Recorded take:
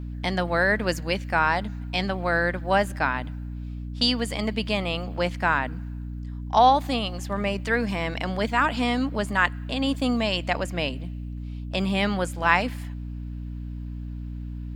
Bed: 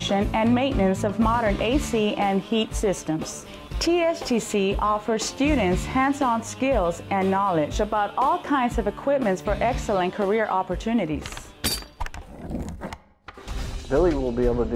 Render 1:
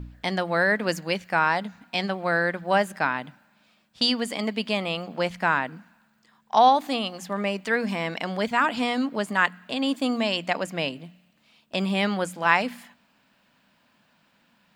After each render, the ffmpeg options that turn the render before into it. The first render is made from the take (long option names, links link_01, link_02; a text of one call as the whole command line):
ffmpeg -i in.wav -af "bandreject=frequency=60:width_type=h:width=4,bandreject=frequency=120:width_type=h:width=4,bandreject=frequency=180:width_type=h:width=4,bandreject=frequency=240:width_type=h:width=4,bandreject=frequency=300:width_type=h:width=4" out.wav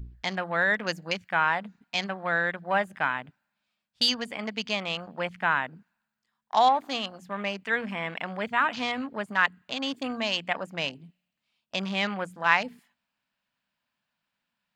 ffmpeg -i in.wav -af "afwtdn=0.0158,equalizer=frequency=310:width=0.53:gain=-8.5" out.wav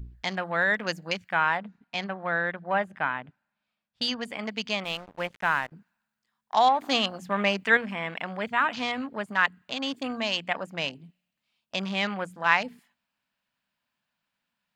ffmpeg -i in.wav -filter_complex "[0:a]asettb=1/sr,asplit=3[link_01][link_02][link_03];[link_01]atrim=end=1.574[link_04];[link_02]atrim=start=1.57:end=4.23,asetpts=PTS-STARTPTS,afade=type=in:duration=0.004:curve=qsin,afade=type=out:start_time=2.656:duration=0.004:curve=qsin,lowpass=frequency=2500:poles=1[link_05];[link_03]atrim=start=4.226[link_06];[link_04][link_05]acrossfade=duration=0.004:curve1=hsin:curve2=qsin[link_07];[link_07][link_06]acrossfade=duration=0.004:curve1=qsin:curve2=hsin,asettb=1/sr,asplit=3[link_08][link_09][link_10];[link_08]atrim=end=4.844[link_11];[link_09]atrim=start=4.84:end=5.72,asetpts=PTS-STARTPTS,afade=type=in:duration=0.004:curve=qsin,afade=type=out:start_time=0.876:duration=0.004:curve=qsin,aeval=exprs='sgn(val(0))*max(abs(val(0))-0.00531,0)':channel_layout=same[link_12];[link_10]atrim=start=5.716[link_13];[link_11][link_12]acrossfade=duration=0.004:curve1=hsin:curve2=qsin[link_14];[link_14][link_13]acrossfade=duration=0.004:curve1=qsin:curve2=hsin,asplit=3[link_15][link_16][link_17];[link_15]atrim=end=6.812[link_18];[link_16]atrim=start=6.808:end=7.772,asetpts=PTS-STARTPTS,volume=6.5dB[link_19];[link_17]atrim=start=7.768[link_20];[link_18][link_19]acrossfade=duration=0.004:curve1=hsin:curve2=hsin[link_21];[link_21][link_20]acrossfade=duration=0.004:curve1=hsin:curve2=hsin" out.wav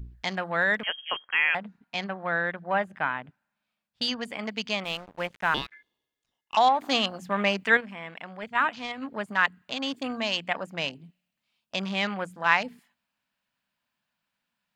ffmpeg -i in.wav -filter_complex "[0:a]asettb=1/sr,asplit=3[link_01][link_02][link_03];[link_01]atrim=end=0.834[link_04];[link_02]atrim=start=0.83:end=1.55,asetpts=PTS-STARTPTS,afade=type=in:duration=0.004:curve=qsin,afade=type=out:start_time=0.716:duration=0.004:curve=qsin,lowpass=frequency=2900:width_type=q:width=0.5098,lowpass=frequency=2900:width_type=q:width=0.6013,lowpass=frequency=2900:width_type=q:width=0.9,lowpass=frequency=2900:width_type=q:width=2.563,afreqshift=-3400[link_05];[link_03]atrim=start=1.546[link_06];[link_04][link_05]acrossfade=duration=0.004:curve1=hsin:curve2=qsin[link_07];[link_07][link_06]acrossfade=duration=0.004:curve1=qsin:curve2=hsin,asettb=1/sr,asplit=3[link_08][link_09][link_10];[link_08]atrim=end=5.544[link_11];[link_09]atrim=start=5.54:end=6.57,asetpts=PTS-STARTPTS,afade=type=in:duration=0.004:curve=qsin,afade=type=out:start_time=1.026:duration=0.004:curve=qsin,aeval=exprs='val(0)*sin(2*PI*1900*n/s)':channel_layout=same[link_12];[link_10]atrim=start=6.566[link_13];[link_11][link_12]acrossfade=duration=0.004:curve1=hsin:curve2=qsin[link_14];[link_14][link_13]acrossfade=duration=0.004:curve1=qsin:curve2=hsin,asplit=3[link_15][link_16][link_17];[link_15]afade=type=out:start_time=7.74:duration=0.02[link_18];[link_16]agate=range=-7dB:threshold=-29dB:ratio=16:release=100:detection=peak,afade=type=in:start_time=7.74:duration=0.02,afade=type=out:start_time=9.01:duration=0.02[link_19];[link_17]afade=type=in:start_time=9.01:duration=0.02[link_20];[link_18][link_19][link_20]amix=inputs=3:normalize=0" out.wav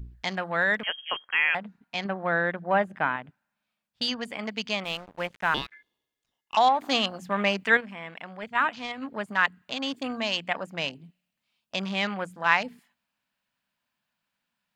ffmpeg -i in.wav -filter_complex "[0:a]asettb=1/sr,asplit=3[link_01][link_02][link_03];[link_01]atrim=end=2.054[link_04];[link_02]atrim=start=2.05:end=3.16,asetpts=PTS-STARTPTS,afade=type=in:duration=0.004:curve=qsin,afade=type=out:start_time=1.106:duration=0.004:curve=qsin,equalizer=frequency=310:width=0.43:gain=5[link_05];[link_03]atrim=start=3.156[link_06];[link_04][link_05]acrossfade=duration=0.004:curve1=hsin:curve2=qsin[link_07];[link_07][link_06]acrossfade=duration=0.004:curve1=qsin:curve2=hsin" out.wav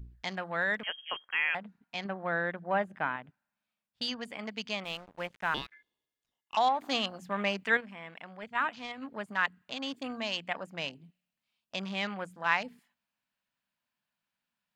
ffmpeg -i in.wav -af "volume=-6dB" out.wav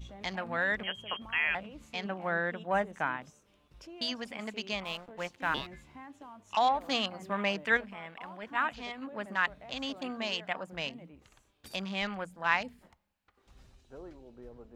ffmpeg -i in.wav -i bed.wav -filter_complex "[1:a]volume=-27.5dB[link_01];[0:a][link_01]amix=inputs=2:normalize=0" out.wav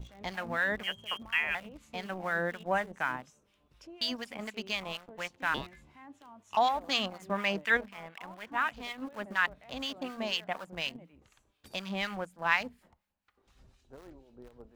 ffmpeg -i in.wav -filter_complex "[0:a]asplit=2[link_01][link_02];[link_02]aeval=exprs='val(0)*gte(abs(val(0)),0.01)':channel_layout=same,volume=-6.5dB[link_03];[link_01][link_03]amix=inputs=2:normalize=0,acrossover=split=1100[link_04][link_05];[link_04]aeval=exprs='val(0)*(1-0.7/2+0.7/2*cos(2*PI*4.1*n/s))':channel_layout=same[link_06];[link_05]aeval=exprs='val(0)*(1-0.7/2-0.7/2*cos(2*PI*4.1*n/s))':channel_layout=same[link_07];[link_06][link_07]amix=inputs=2:normalize=0" out.wav